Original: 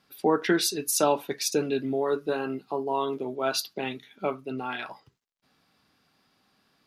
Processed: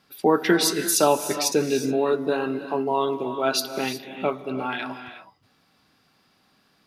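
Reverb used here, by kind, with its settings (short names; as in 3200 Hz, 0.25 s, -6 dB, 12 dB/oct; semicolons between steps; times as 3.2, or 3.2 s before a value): non-linear reverb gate 0.39 s rising, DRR 9 dB; gain +4 dB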